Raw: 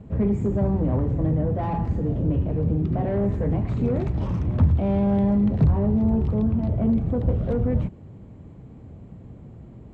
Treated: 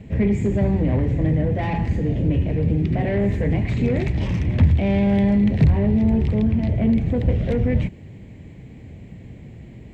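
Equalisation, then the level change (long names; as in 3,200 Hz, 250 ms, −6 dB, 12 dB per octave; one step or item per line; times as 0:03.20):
high shelf with overshoot 1,600 Hz +7.5 dB, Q 3
+3.0 dB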